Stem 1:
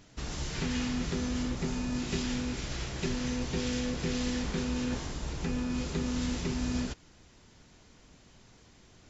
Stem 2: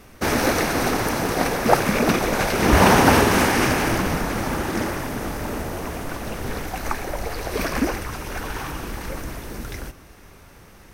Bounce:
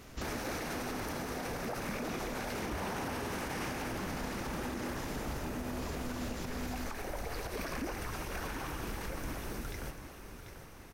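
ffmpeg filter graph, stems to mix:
-filter_complex "[0:a]alimiter=level_in=5dB:limit=-24dB:level=0:latency=1,volume=-5dB,volume=0.5dB[a];[1:a]volume=-6.5dB,asplit=2[b][c];[c]volume=-12.5dB,aecho=0:1:741|1482|2223|2964|3705:1|0.39|0.152|0.0593|0.0231[d];[a][b][d]amix=inputs=3:normalize=0,alimiter=level_in=5dB:limit=-24dB:level=0:latency=1:release=129,volume=-5dB"

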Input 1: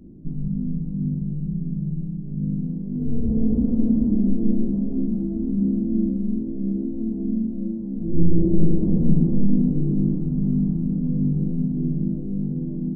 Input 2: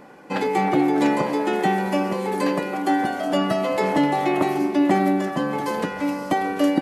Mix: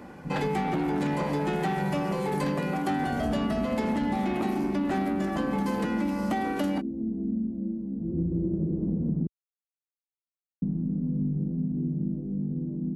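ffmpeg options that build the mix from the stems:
-filter_complex "[0:a]volume=-4dB,asplit=3[a][b][c];[a]atrim=end=9.27,asetpts=PTS-STARTPTS,afade=t=out:st=9.266:d=0.004:c=hsin[d];[b]atrim=start=9.27:end=10.62,asetpts=PTS-STARTPTS,volume=0[e];[c]atrim=start=10.62,asetpts=PTS-STARTPTS,afade=t=in:d=0.004:c=hsin[f];[d][e][f]concat=n=3:v=0:a=1[g];[1:a]asoftclip=type=tanh:threshold=-19dB,volume=-1.5dB[h];[g][h]amix=inputs=2:normalize=0,highpass=56,acompressor=threshold=-24dB:ratio=6"

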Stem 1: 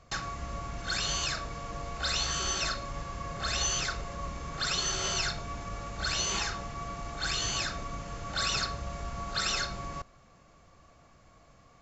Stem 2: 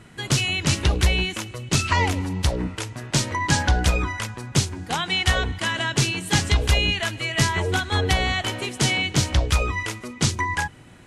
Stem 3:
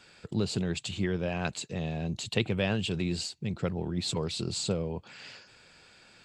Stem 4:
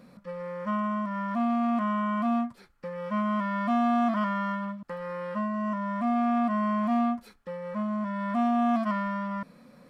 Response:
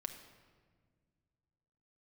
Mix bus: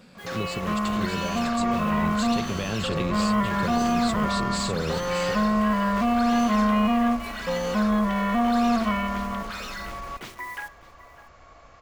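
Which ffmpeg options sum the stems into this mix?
-filter_complex "[0:a]asubboost=boost=11.5:cutoff=54,asplit=2[a][b];[b]highpass=f=720:p=1,volume=27dB,asoftclip=type=tanh:threshold=-12.5dB[c];[a][c]amix=inputs=2:normalize=0,lowpass=f=1.7k:p=1,volume=-6dB,adelay=150,volume=-5.5dB[d];[1:a]acrossover=split=290 2600:gain=0.0891 1 0.0708[e][f][g];[e][f][g]amix=inputs=3:normalize=0,acrusher=bits=6:mix=0:aa=0.000001,adynamicequalizer=threshold=0.0112:dfrequency=1600:dqfactor=0.7:tfrequency=1600:tqfactor=0.7:attack=5:release=100:ratio=0.375:range=3.5:mode=boostabove:tftype=highshelf,volume=-12dB,asplit=3[h][i][j];[i]volume=-5.5dB[k];[j]volume=-16.5dB[l];[2:a]volume=-1dB,asplit=2[m][n];[n]volume=-5dB[o];[3:a]volume=-2.5dB,asplit=3[p][q][r];[q]volume=-1.5dB[s];[r]volume=-12.5dB[t];[m][p]amix=inputs=2:normalize=0,dynaudnorm=f=500:g=9:m=13dB,alimiter=limit=-17.5dB:level=0:latency=1:release=170,volume=0dB[u];[d][h]amix=inputs=2:normalize=0,alimiter=level_in=3dB:limit=-24dB:level=0:latency=1,volume=-3dB,volume=0dB[v];[4:a]atrim=start_sample=2205[w];[k][s]amix=inputs=2:normalize=0[x];[x][w]afir=irnorm=-1:irlink=0[y];[l][o][t]amix=inputs=3:normalize=0,aecho=0:1:601:1[z];[u][v][y][z]amix=inputs=4:normalize=0,tremolo=f=250:d=0.333"

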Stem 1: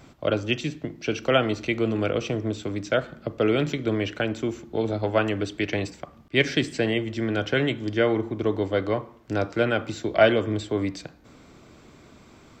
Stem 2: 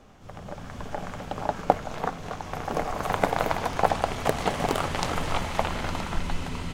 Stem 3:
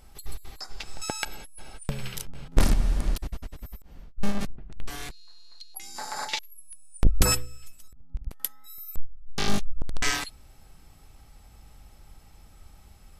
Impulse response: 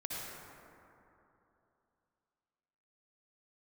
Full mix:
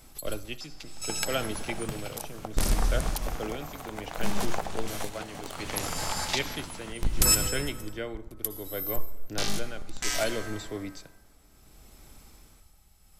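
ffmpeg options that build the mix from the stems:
-filter_complex "[0:a]volume=-10.5dB,asplit=2[a][b];[b]volume=-22dB[c];[1:a]acompressor=threshold=-26dB:ratio=5,adelay=750,volume=-4dB[d];[2:a]volume=-5.5dB,asplit=2[e][f];[f]volume=-6dB[g];[3:a]atrim=start_sample=2205[h];[c][g]amix=inputs=2:normalize=0[i];[i][h]afir=irnorm=-1:irlink=0[j];[a][d][e][j]amix=inputs=4:normalize=0,highshelf=f=4.4k:g=11.5,tremolo=f=0.66:d=0.62"

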